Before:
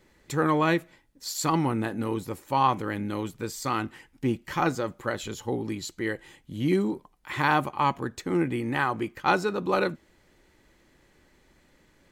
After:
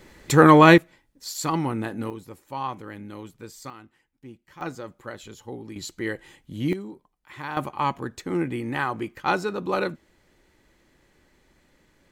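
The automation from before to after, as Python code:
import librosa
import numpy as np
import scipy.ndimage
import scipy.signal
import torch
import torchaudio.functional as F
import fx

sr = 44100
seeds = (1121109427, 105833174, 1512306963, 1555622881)

y = fx.gain(x, sr, db=fx.steps((0.0, 11.0), (0.78, -0.5), (2.1, -8.0), (3.7, -17.5), (4.61, -7.5), (5.76, 0.5), (6.73, -10.5), (7.57, -0.5)))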